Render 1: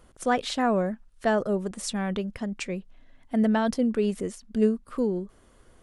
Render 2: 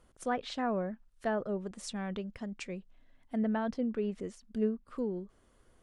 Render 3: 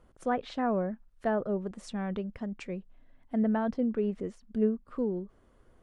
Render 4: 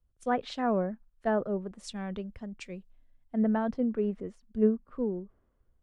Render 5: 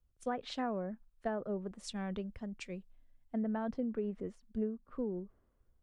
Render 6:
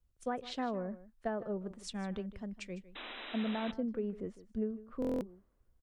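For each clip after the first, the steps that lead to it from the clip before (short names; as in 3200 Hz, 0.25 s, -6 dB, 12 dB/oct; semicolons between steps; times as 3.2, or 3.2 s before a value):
treble ducked by the level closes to 2400 Hz, closed at -20 dBFS; gain -8.5 dB
high shelf 2700 Hz -12 dB; gain +4 dB
three-band expander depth 70%
compressor 10:1, threshold -30 dBFS, peak gain reduction 12.5 dB; gain -2 dB
echo 0.155 s -16.5 dB; painted sound noise, 2.95–3.72, 210–4000 Hz -46 dBFS; stuck buffer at 5, samples 1024, times 8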